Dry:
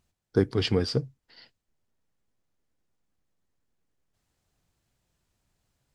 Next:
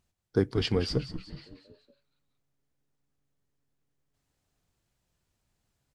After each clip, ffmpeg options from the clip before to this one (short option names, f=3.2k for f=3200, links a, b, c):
-filter_complex "[0:a]asplit=6[a][b][c][d][e][f];[b]adelay=186,afreqshift=-140,volume=-11.5dB[g];[c]adelay=372,afreqshift=-280,volume=-17.3dB[h];[d]adelay=558,afreqshift=-420,volume=-23.2dB[i];[e]adelay=744,afreqshift=-560,volume=-29dB[j];[f]adelay=930,afreqshift=-700,volume=-34.9dB[k];[a][g][h][i][j][k]amix=inputs=6:normalize=0,volume=-2.5dB"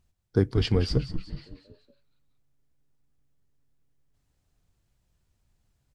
-af "lowshelf=f=120:g=11.5"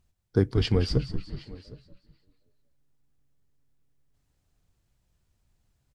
-af "aecho=1:1:764:0.0841"